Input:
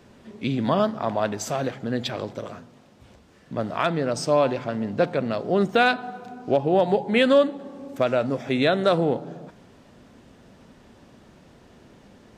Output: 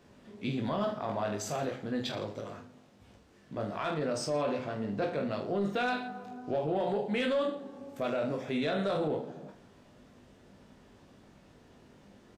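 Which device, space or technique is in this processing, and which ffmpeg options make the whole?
soft clipper into limiter: -af "aecho=1:1:20|45|76.25|115.3|164.1:0.631|0.398|0.251|0.158|0.1,asoftclip=type=tanh:threshold=-8dB,alimiter=limit=-15dB:level=0:latency=1:release=21,volume=-8.5dB"

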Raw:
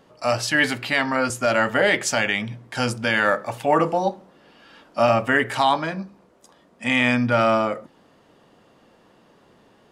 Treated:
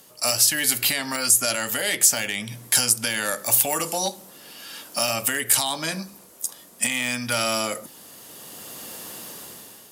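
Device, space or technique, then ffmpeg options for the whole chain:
FM broadcast chain: -filter_complex "[0:a]highpass=56,dynaudnorm=framelen=230:gausssize=7:maxgain=14.5dB,acrossover=split=640|2500[link_01][link_02][link_03];[link_01]acompressor=threshold=-26dB:ratio=4[link_04];[link_02]acompressor=threshold=-28dB:ratio=4[link_05];[link_03]acompressor=threshold=-31dB:ratio=4[link_06];[link_04][link_05][link_06]amix=inputs=3:normalize=0,aemphasis=mode=production:type=75fm,alimiter=limit=-13dB:level=0:latency=1:release=352,asoftclip=type=hard:threshold=-16dB,lowpass=frequency=15000:width=0.5412,lowpass=frequency=15000:width=1.3066,aemphasis=mode=production:type=75fm,volume=-2dB"

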